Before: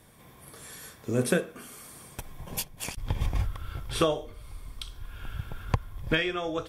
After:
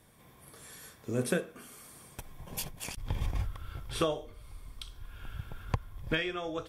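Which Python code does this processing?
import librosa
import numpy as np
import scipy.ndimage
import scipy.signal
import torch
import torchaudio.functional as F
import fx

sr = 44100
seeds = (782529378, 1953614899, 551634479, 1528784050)

y = fx.sustainer(x, sr, db_per_s=90.0, at=(2.49, 3.31))
y = y * 10.0 ** (-5.0 / 20.0)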